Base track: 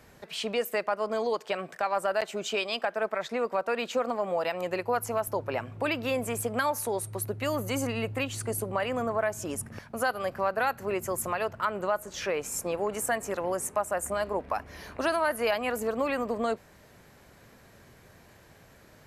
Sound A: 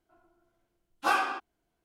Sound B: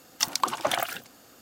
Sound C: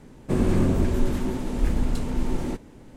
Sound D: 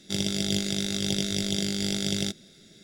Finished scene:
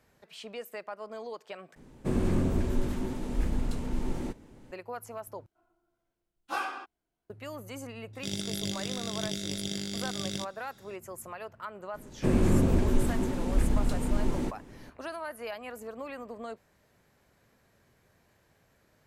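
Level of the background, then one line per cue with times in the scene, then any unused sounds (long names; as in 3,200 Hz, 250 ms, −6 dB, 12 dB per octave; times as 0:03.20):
base track −11.5 dB
0:01.76: overwrite with C −6 dB
0:05.46: overwrite with A −7 dB
0:08.13: mix in D −7 dB
0:11.94: mix in C −2.5 dB
not used: B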